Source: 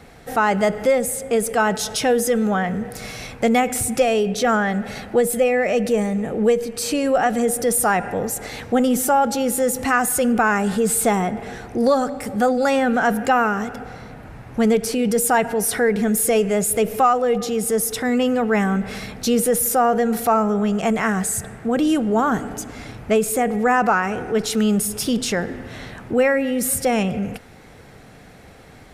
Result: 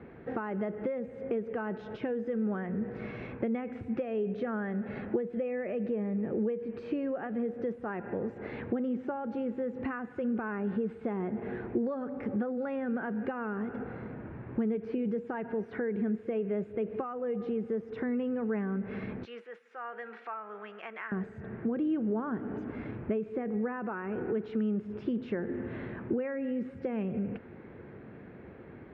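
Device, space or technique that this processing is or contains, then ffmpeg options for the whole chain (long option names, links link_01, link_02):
bass amplifier: -filter_complex "[0:a]asettb=1/sr,asplit=3[link_01][link_02][link_03];[link_01]atrim=end=19.254[link_04];[link_02]atrim=start=19.25:end=21.12,asetpts=PTS-STARTPTS,afade=type=in:duration=0.004:curve=qsin,afade=type=out:start_time=1.866:duration=0.004:curve=qsin,highpass=1400[link_05];[link_03]atrim=start=21.116[link_06];[link_04][link_05]acrossfade=duration=0.004:curve1=hsin:curve2=qsin[link_07];[link_07][link_06]acrossfade=duration=0.004:curve1=qsin:curve2=hsin,acompressor=threshold=-28dB:ratio=6,highpass=75,equalizer=frequency=220:width_type=q:width=4:gain=4,equalizer=frequency=360:width_type=q:width=4:gain=9,equalizer=frequency=750:width_type=q:width=4:gain=-8,equalizer=frequency=1300:width_type=q:width=4:gain=-4,equalizer=frequency=2000:width_type=q:width=4:gain=-4,lowpass=frequency=2100:width=0.5412,lowpass=frequency=2100:width=1.3066,volume=-4dB"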